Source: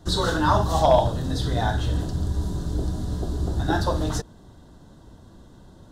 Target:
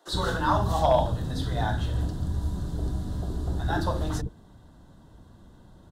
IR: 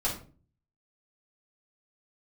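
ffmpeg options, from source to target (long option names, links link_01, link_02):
-filter_complex "[0:a]equalizer=frequency=5800:width=1.1:gain=-5,acrossover=split=400[link_01][link_02];[link_01]adelay=70[link_03];[link_03][link_02]amix=inputs=2:normalize=0,volume=-3dB"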